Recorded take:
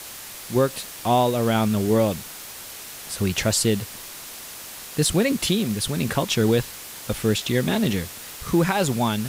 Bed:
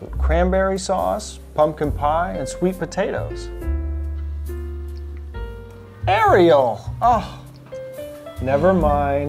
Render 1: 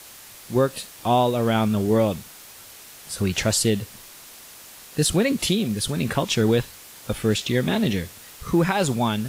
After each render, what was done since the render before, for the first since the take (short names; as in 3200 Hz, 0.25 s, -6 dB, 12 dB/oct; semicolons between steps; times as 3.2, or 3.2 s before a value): noise print and reduce 6 dB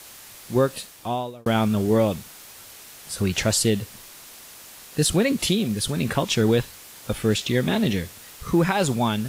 0.71–1.46 fade out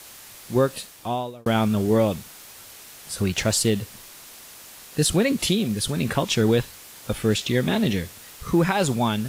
3.24–3.76 G.711 law mismatch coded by A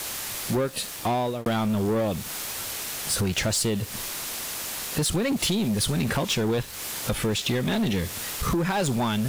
compressor 6:1, threshold -30 dBFS, peak gain reduction 14.5 dB; sample leveller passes 3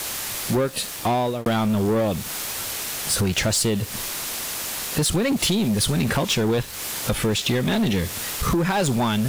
gain +3.5 dB